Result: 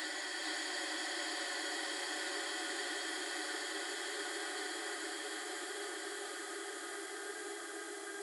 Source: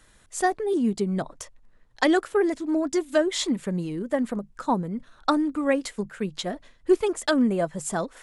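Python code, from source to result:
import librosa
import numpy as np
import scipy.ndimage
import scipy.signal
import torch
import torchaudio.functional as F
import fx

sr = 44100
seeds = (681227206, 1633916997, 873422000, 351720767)

p1 = fx.paulstretch(x, sr, seeds[0], factor=20.0, window_s=1.0, from_s=2.04)
p2 = np.diff(p1, prepend=0.0)
p3 = p2 + fx.echo_single(p2, sr, ms=436, db=-3.0, dry=0)
y = F.gain(torch.from_numpy(p3), -1.5).numpy()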